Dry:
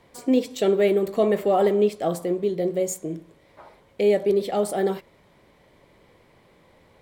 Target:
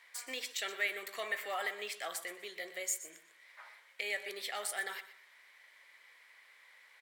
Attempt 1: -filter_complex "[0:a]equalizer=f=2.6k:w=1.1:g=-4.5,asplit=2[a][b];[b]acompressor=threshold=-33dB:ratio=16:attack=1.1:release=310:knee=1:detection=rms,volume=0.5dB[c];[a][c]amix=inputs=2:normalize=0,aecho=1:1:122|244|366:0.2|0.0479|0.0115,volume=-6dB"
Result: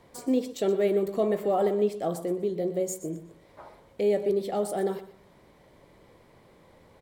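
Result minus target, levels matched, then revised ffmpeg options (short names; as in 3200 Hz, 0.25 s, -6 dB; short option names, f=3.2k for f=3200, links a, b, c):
2000 Hz band -20.0 dB
-filter_complex "[0:a]highpass=f=1.9k:t=q:w=2.7,equalizer=f=2.6k:w=1.1:g=-4.5,asplit=2[a][b];[b]acompressor=threshold=-33dB:ratio=16:attack=1.1:release=310:knee=1:detection=rms,volume=0.5dB[c];[a][c]amix=inputs=2:normalize=0,aecho=1:1:122|244|366:0.2|0.0479|0.0115,volume=-6dB"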